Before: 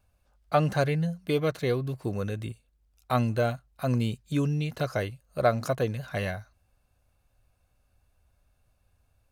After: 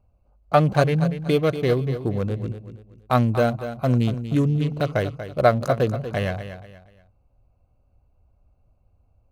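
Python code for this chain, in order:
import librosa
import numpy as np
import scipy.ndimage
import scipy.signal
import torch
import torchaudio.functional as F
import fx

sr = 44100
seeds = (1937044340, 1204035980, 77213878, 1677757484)

y = fx.wiener(x, sr, points=25)
y = fx.echo_feedback(y, sr, ms=238, feedback_pct=32, wet_db=-11)
y = F.gain(torch.from_numpy(y), 6.5).numpy()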